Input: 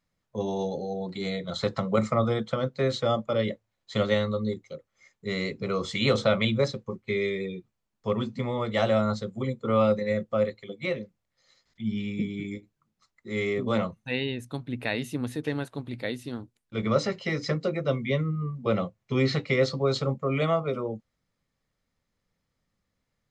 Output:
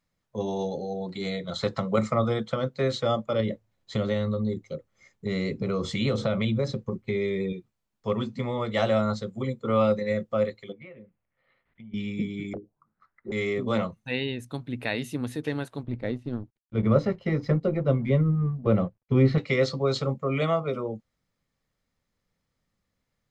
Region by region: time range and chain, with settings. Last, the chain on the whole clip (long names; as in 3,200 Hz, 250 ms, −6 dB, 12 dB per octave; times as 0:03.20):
0:03.40–0:07.53: low-shelf EQ 480 Hz +9 dB + downward compressor 2.5 to 1, threshold −25 dBFS
0:10.72–0:11.94: Butterworth low-pass 2,800 Hz + downward compressor 10 to 1, threshold −42 dBFS
0:12.53–0:13.32: wrap-around overflow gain 30.5 dB + envelope-controlled low-pass 390–1,700 Hz down, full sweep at −38 dBFS
0:15.83–0:19.38: mu-law and A-law mismatch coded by A + low-pass filter 2,600 Hz 6 dB per octave + spectral tilt −2.5 dB per octave
whole clip: no processing